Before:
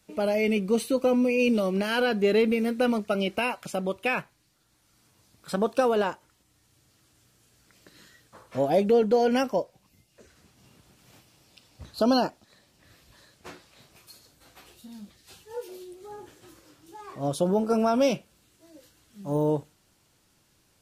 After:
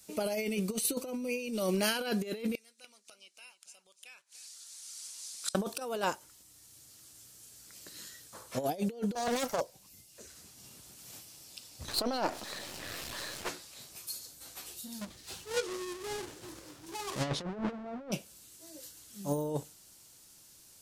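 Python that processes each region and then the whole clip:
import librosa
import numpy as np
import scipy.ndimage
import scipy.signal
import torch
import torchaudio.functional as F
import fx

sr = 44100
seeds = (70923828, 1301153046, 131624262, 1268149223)

y = fx.chain(x, sr, fx.weighting(curve='ITU-R 468'),
    fx.gate_flip(shuts_db=-29.0, range_db=-33),
    fx.echo_single(ms=293, db=-13.5), at=(2.55, 5.55))
y = fx.chain(y, sr, fx.lower_of_two(delay_ms=1.4),
    fx.highpass(hz=100.0, slope=6),
    fx.doppler_dist(depth_ms=0.4), at=(9.15, 9.61))
y = fx.chain(y, sr, fx.halfwave_gain(db=-12.0),
    fx.bass_treble(bass_db=-7, treble_db=-13),
    fx.env_flatten(amount_pct=50), at=(11.88, 13.49))
y = fx.chain(y, sr, fx.halfwave_hold(),
    fx.env_lowpass_down(base_hz=1100.0, full_db=-16.5),
    fx.high_shelf(hz=6100.0, db=-10.5), at=(15.01, 18.12))
y = fx.bass_treble(y, sr, bass_db=-2, treble_db=14)
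y = fx.over_compress(y, sr, threshold_db=-27.0, ratio=-0.5)
y = y * librosa.db_to_amplitude(-5.0)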